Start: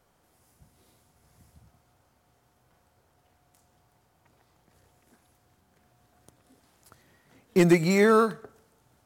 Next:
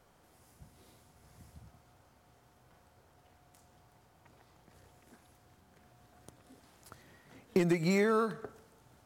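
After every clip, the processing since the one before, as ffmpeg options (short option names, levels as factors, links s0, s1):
-af "acompressor=threshold=0.0447:ratio=16,highshelf=f=7300:g=-4,volume=1.33"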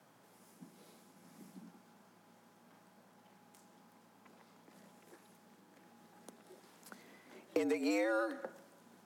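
-af "acompressor=threshold=0.0224:ratio=2.5,afreqshift=110"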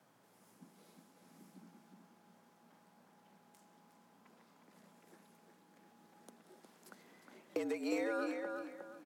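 -filter_complex "[0:a]asplit=2[s0][s1];[s1]adelay=360,lowpass=f=4400:p=1,volume=0.562,asplit=2[s2][s3];[s3]adelay=360,lowpass=f=4400:p=1,volume=0.29,asplit=2[s4][s5];[s5]adelay=360,lowpass=f=4400:p=1,volume=0.29,asplit=2[s6][s7];[s7]adelay=360,lowpass=f=4400:p=1,volume=0.29[s8];[s0][s2][s4][s6][s8]amix=inputs=5:normalize=0,volume=0.631"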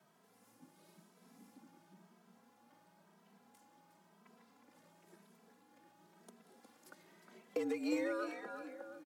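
-filter_complex "[0:a]asplit=2[s0][s1];[s1]adelay=2.7,afreqshift=0.97[s2];[s0][s2]amix=inputs=2:normalize=1,volume=1.26"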